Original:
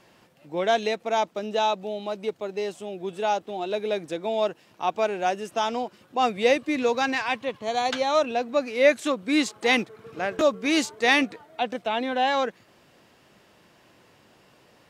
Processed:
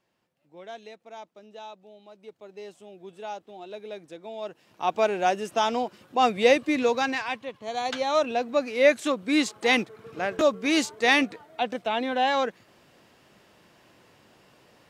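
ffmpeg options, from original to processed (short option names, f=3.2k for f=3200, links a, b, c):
-af "volume=8.5dB,afade=t=in:st=2.14:d=0.53:silence=0.446684,afade=t=in:st=4.42:d=0.59:silence=0.223872,afade=t=out:st=6.67:d=0.85:silence=0.354813,afade=t=in:st=7.52:d=0.79:silence=0.446684"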